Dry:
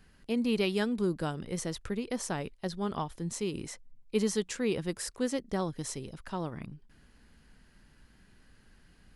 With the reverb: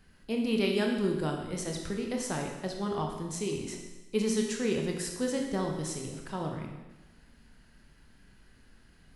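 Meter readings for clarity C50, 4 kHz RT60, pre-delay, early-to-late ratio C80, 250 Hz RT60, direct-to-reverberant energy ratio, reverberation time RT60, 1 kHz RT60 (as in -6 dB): 4.5 dB, 1.1 s, 22 ms, 6.0 dB, 1.1 s, 1.5 dB, 1.1 s, 1.1 s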